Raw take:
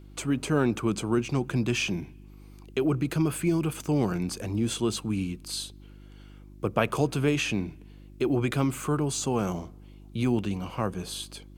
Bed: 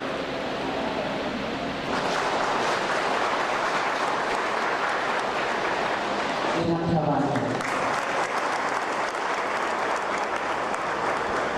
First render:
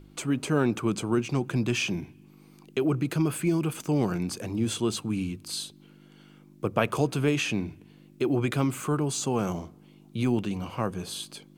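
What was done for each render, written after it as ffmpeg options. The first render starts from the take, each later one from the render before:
ffmpeg -i in.wav -af "bandreject=frequency=50:width_type=h:width=4,bandreject=frequency=100:width_type=h:width=4" out.wav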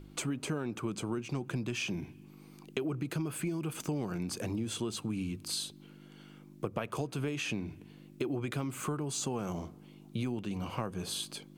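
ffmpeg -i in.wav -af "acompressor=threshold=-31dB:ratio=10" out.wav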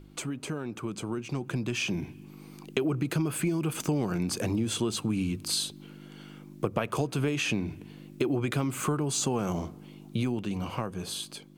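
ffmpeg -i in.wav -af "dynaudnorm=framelen=350:gausssize=9:maxgain=6.5dB" out.wav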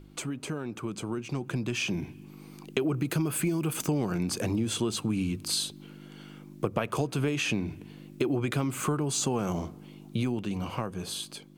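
ffmpeg -i in.wav -filter_complex "[0:a]asettb=1/sr,asplit=3[link_01][link_02][link_03];[link_01]atrim=end=2.944[link_04];[link_02]atrim=start=2.94:end=3.87,asetpts=PTS-STARTPTS,afade=type=in:duration=0.004:curve=qsin,afade=type=out:start_time=0.926:duration=0.004:curve=qsin,highshelf=frequency=11000:gain=8.5[link_05];[link_03]atrim=start=3.866[link_06];[link_04][link_05]acrossfade=duration=0.004:curve1=hsin:curve2=qsin[link_07];[link_07][link_06]acrossfade=duration=0.004:curve1=qsin:curve2=hsin" out.wav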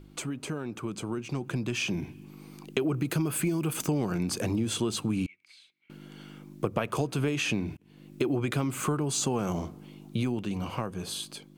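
ffmpeg -i in.wav -filter_complex "[0:a]asettb=1/sr,asplit=3[link_01][link_02][link_03];[link_01]atrim=end=5.264[link_04];[link_02]atrim=start=5.26:end=5.9,asetpts=PTS-STARTPTS,afade=type=in:duration=0.004:curve=qsin,afade=type=out:start_time=0.636:duration=0.004:curve=qsin,bandpass=frequency=2200:width_type=q:width=14[link_05];[link_03]atrim=start=5.896[link_06];[link_04][link_05]acrossfade=duration=0.004:curve1=hsin:curve2=qsin[link_07];[link_07][link_06]acrossfade=duration=0.004:curve1=qsin:curve2=hsin,asplit=2[link_08][link_09];[link_08]atrim=end=7.77,asetpts=PTS-STARTPTS,afade=type=out:start_time=7.766:duration=0.004:curve=hsin[link_10];[link_09]atrim=start=7.77,asetpts=PTS-STARTPTS,afade=type=in:duration=0.41[link_11];[link_10][link_11]concat=n=2:v=0:a=1" out.wav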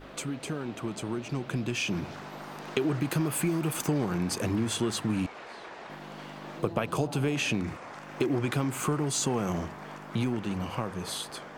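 ffmpeg -i in.wav -i bed.wav -filter_complex "[1:a]volume=-18.5dB[link_01];[0:a][link_01]amix=inputs=2:normalize=0" out.wav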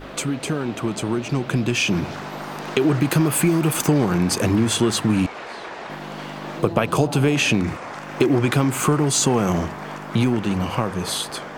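ffmpeg -i in.wav -af "volume=10dB,alimiter=limit=-3dB:level=0:latency=1" out.wav

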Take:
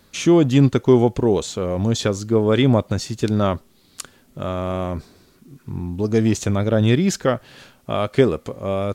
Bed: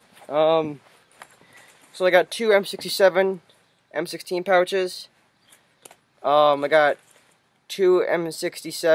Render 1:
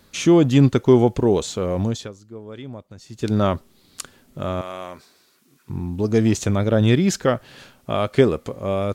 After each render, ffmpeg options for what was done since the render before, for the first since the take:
ffmpeg -i in.wav -filter_complex "[0:a]asettb=1/sr,asplit=3[link_01][link_02][link_03];[link_01]atrim=end=4.614[link_04];[link_02]atrim=start=4.61:end=5.7,asetpts=PTS-STARTPTS,afade=type=in:duration=0.004:curve=qsin,afade=type=out:start_time=1.086:duration=0.004:curve=qsin,highpass=frequency=1300:poles=1[link_05];[link_03]atrim=start=5.696[link_06];[link_04][link_05]acrossfade=duration=0.004:curve1=hsin:curve2=qsin[link_07];[link_07][link_06]acrossfade=duration=0.004:curve1=qsin:curve2=hsin,asplit=3[link_08][link_09][link_10];[link_08]atrim=end=2.2,asetpts=PTS-STARTPTS,afade=type=out:start_time=1.81:duration=0.39:curve=qua:silence=0.1[link_11];[link_09]atrim=start=2.2:end=2.94,asetpts=PTS-STARTPTS,volume=-20dB[link_12];[link_10]atrim=start=2.94,asetpts=PTS-STARTPTS,afade=type=in:duration=0.39:curve=qua:silence=0.1[link_13];[link_11][link_12][link_13]concat=n=3:v=0:a=1" out.wav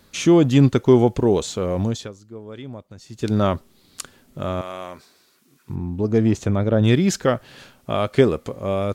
ffmpeg -i in.wav -filter_complex "[0:a]asplit=3[link_01][link_02][link_03];[link_01]afade=type=out:start_time=5.74:duration=0.02[link_04];[link_02]highshelf=frequency=2500:gain=-10.5,afade=type=in:start_time=5.74:duration=0.02,afade=type=out:start_time=6.83:duration=0.02[link_05];[link_03]afade=type=in:start_time=6.83:duration=0.02[link_06];[link_04][link_05][link_06]amix=inputs=3:normalize=0" out.wav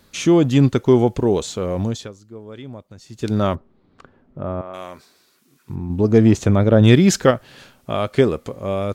ffmpeg -i in.wav -filter_complex "[0:a]asettb=1/sr,asplit=3[link_01][link_02][link_03];[link_01]atrim=end=3.554[link_04];[link_02]atrim=start=3.55:end=4.74,asetpts=PTS-STARTPTS,afade=type=in:duration=0.004:curve=qsin,afade=type=out:start_time=1.186:duration=0.004:curve=qsin,lowpass=1200[link_05];[link_03]atrim=start=4.736[link_06];[link_04][link_05]acrossfade=duration=0.004:curve1=hsin:curve2=qsin[link_07];[link_07][link_06]acrossfade=duration=0.004:curve1=qsin:curve2=hsin,asplit=3[link_08][link_09][link_10];[link_08]atrim=end=5.902[link_11];[link_09]atrim=start=5.898:end=7.312,asetpts=PTS-STARTPTS,volume=5dB[link_12];[link_10]atrim=start=7.308[link_13];[link_11][link_12]acrossfade=duration=0.004:curve1=hsin:curve2=hsin[link_14];[link_14][link_13]acrossfade=duration=0.004:curve1=hsin:curve2=hsin" out.wav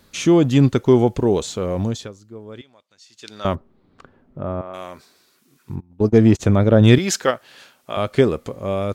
ffmpeg -i in.wav -filter_complex "[0:a]asettb=1/sr,asplit=3[link_01][link_02][link_03];[link_01]atrim=end=2.614[link_04];[link_02]atrim=start=2.61:end=3.45,asetpts=PTS-STARTPTS,afade=type=in:duration=0.004:curve=qsin,afade=type=out:start_time=0.836:duration=0.004:curve=qsin,bandpass=frequency=4100:width_type=q:width=0.76[link_05];[link_03]atrim=start=3.446[link_06];[link_04][link_05]acrossfade=duration=0.004:curve1=hsin:curve2=qsin[link_07];[link_07][link_06]acrossfade=duration=0.004:curve1=qsin:curve2=hsin,asplit=3[link_08][link_09][link_10];[link_08]afade=type=out:start_time=5.79:duration=0.02[link_11];[link_09]agate=range=-27dB:threshold=-19dB:ratio=16:release=100:detection=peak,afade=type=in:start_time=5.79:duration=0.02,afade=type=out:start_time=6.39:duration=0.02[link_12];[link_10]afade=type=in:start_time=6.39:duration=0.02[link_13];[link_11][link_12][link_13]amix=inputs=3:normalize=0,asettb=1/sr,asplit=3[link_14][link_15][link_16];[link_14]atrim=end=6.984[link_17];[link_15]atrim=start=6.98:end=7.97,asetpts=PTS-STARTPTS,afade=type=in:duration=0.004:curve=qsin,afade=type=out:start_time=0.986:duration=0.004:curve=qsin,highpass=frequency=720:poles=1[link_18];[link_16]atrim=start=7.966[link_19];[link_17][link_18]acrossfade=duration=0.004:curve1=hsin:curve2=qsin[link_20];[link_20][link_19]acrossfade=duration=0.004:curve1=qsin:curve2=hsin" out.wav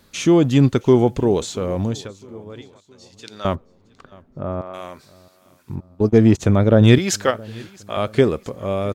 ffmpeg -i in.wav -af "aecho=1:1:669|1338|2007:0.0631|0.0303|0.0145" out.wav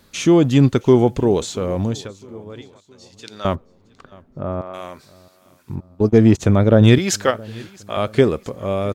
ffmpeg -i in.wav -af "volume=1dB,alimiter=limit=-2dB:level=0:latency=1" out.wav

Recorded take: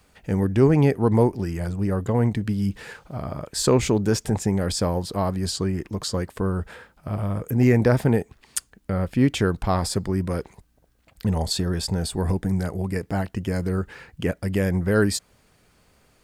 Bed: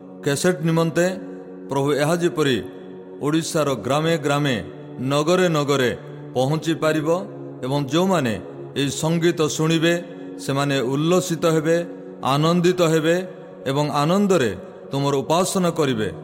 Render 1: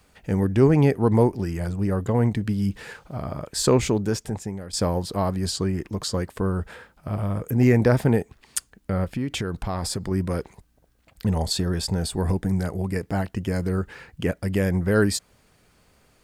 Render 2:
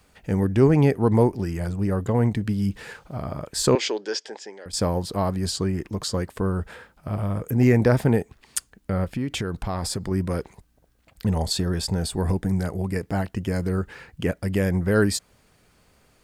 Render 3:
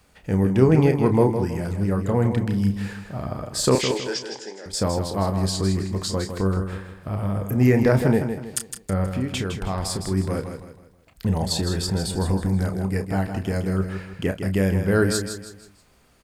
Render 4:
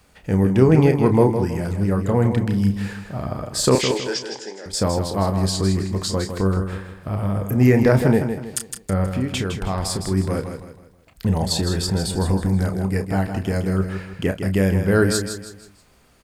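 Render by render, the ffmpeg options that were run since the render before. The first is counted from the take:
ffmpeg -i in.wav -filter_complex "[0:a]asettb=1/sr,asplit=3[link_01][link_02][link_03];[link_01]atrim=end=9.044[link_04];[link_02]atrim=start=9.04:end=10.11,asetpts=PTS-STARTPTS,afade=type=in:duration=0.004:curve=qsin,afade=type=out:start_time=1.066:duration=0.004:curve=qsin,acompressor=threshold=-23dB:ratio=6:attack=3.2:release=140:knee=1:detection=peak[link_05];[link_03]atrim=start=10.106[link_06];[link_04][link_05]acrossfade=duration=0.004:curve1=hsin:curve2=qsin[link_07];[link_07][link_06]acrossfade=duration=0.004:curve1=qsin:curve2=hsin,asplit=2[link_08][link_09];[link_08]atrim=end=4.73,asetpts=PTS-STARTPTS,afade=type=out:start_time=3.73:duration=1:silence=0.158489[link_10];[link_09]atrim=start=4.73,asetpts=PTS-STARTPTS,afade=type=in:duration=0.004:curve=hsin:silence=0.158489[link_11];[link_10][link_11]concat=n=2:v=0:a=1" out.wav
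ffmpeg -i in.wav -filter_complex "[0:a]asettb=1/sr,asplit=3[link_01][link_02][link_03];[link_01]atrim=end=3.754[link_04];[link_02]atrim=start=3.75:end=4.66,asetpts=PTS-STARTPTS,afade=type=in:duration=0.004:curve=qsin,afade=type=out:start_time=0.906:duration=0.004:curve=qsin,highpass=frequency=380:width=0.5412,highpass=frequency=380:width=1.3066,equalizer=frequency=710:width_type=q:width=4:gain=-3,equalizer=frequency=1200:width_type=q:width=4:gain=-6,equalizer=frequency=1700:width_type=q:width=4:gain=6,equalizer=frequency=3200:width_type=q:width=4:gain=8,equalizer=frequency=4900:width_type=q:width=4:gain=9,lowpass=frequency=6600:width=0.5412,lowpass=frequency=6600:width=1.3066[link_05];[link_03]atrim=start=4.656[link_06];[link_04][link_05]acrossfade=duration=0.004:curve1=hsin:curve2=qsin[link_07];[link_07][link_06]acrossfade=duration=0.004:curve1=qsin:curve2=hsin" out.wav
ffmpeg -i in.wav -filter_complex "[0:a]asplit=2[link_01][link_02];[link_02]adelay=31,volume=-9dB[link_03];[link_01][link_03]amix=inputs=2:normalize=0,asplit=2[link_04][link_05];[link_05]aecho=0:1:160|320|480|640:0.398|0.151|0.0575|0.0218[link_06];[link_04][link_06]amix=inputs=2:normalize=0" out.wav
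ffmpeg -i in.wav -af "volume=2.5dB,alimiter=limit=-3dB:level=0:latency=1" out.wav

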